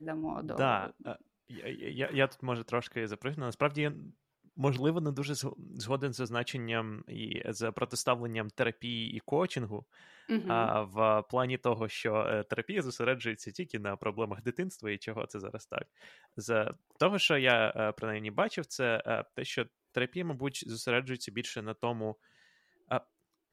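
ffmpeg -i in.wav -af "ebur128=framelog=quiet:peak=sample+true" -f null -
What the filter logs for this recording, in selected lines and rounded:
Integrated loudness:
  I:         -33.3 LUFS
  Threshold: -43.7 LUFS
Loudness range:
  LRA:         5.6 LU
  Threshold: -53.5 LUFS
  LRA low:   -36.2 LUFS
  LRA high:  -30.6 LUFS
Sample peak:
  Peak:      -11.2 dBFS
True peak:
  Peak:      -11.2 dBFS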